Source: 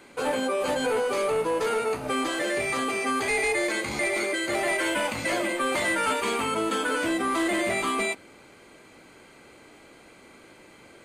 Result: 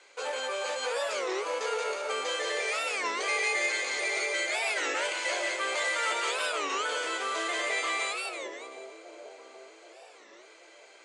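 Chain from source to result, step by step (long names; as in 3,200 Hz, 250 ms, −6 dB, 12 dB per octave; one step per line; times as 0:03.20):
elliptic band-pass filter 450–6,900 Hz, stop band 50 dB
high-shelf EQ 2,900 Hz +11 dB
on a send: echo with a time of its own for lows and highs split 760 Hz, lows 779 ms, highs 179 ms, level −3.5 dB
on the sum: wow of a warped record 33 1/3 rpm, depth 250 cents
level −7.5 dB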